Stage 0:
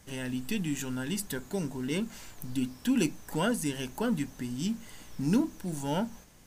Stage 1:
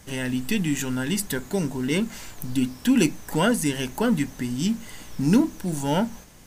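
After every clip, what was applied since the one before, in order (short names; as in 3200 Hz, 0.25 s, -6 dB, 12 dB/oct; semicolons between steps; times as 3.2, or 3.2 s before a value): dynamic EQ 2000 Hz, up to +4 dB, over -57 dBFS, Q 5.4; gain +7.5 dB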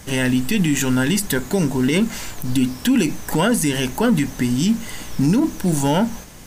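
limiter -18.5 dBFS, peak gain reduction 11 dB; gain +9 dB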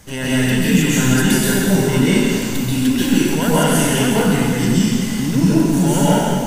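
plate-style reverb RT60 2 s, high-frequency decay 1×, pre-delay 0.12 s, DRR -9 dB; gain -5 dB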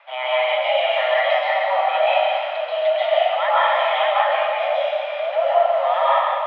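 mistuned SSB +370 Hz 250–2800 Hz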